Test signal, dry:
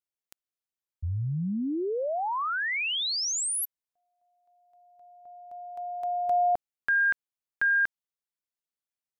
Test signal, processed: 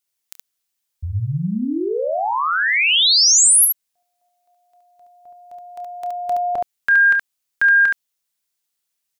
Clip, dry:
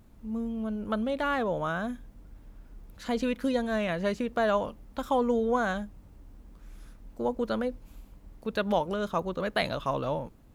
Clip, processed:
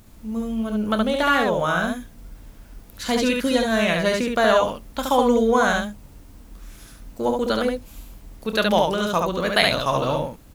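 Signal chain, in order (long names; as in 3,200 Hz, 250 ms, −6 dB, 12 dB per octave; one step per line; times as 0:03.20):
high-shelf EQ 2,300 Hz +10.5 dB
on a send: ambience of single reflections 28 ms −12 dB, 71 ms −3 dB
on the sum: level +5.5 dB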